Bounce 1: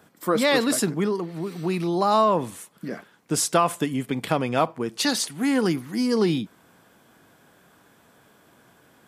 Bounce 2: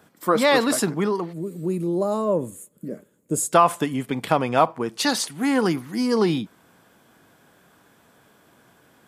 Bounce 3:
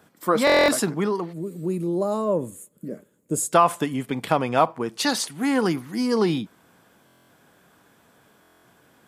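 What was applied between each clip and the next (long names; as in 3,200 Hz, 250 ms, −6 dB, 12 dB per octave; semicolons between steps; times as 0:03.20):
gain on a spectral selection 0:01.33–0:03.52, 640–6,400 Hz −16 dB; dynamic equaliser 930 Hz, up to +6 dB, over −37 dBFS, Q 0.98
buffer that repeats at 0:00.45/0:07.06/0:08.41, samples 1,024, times 9; level −1 dB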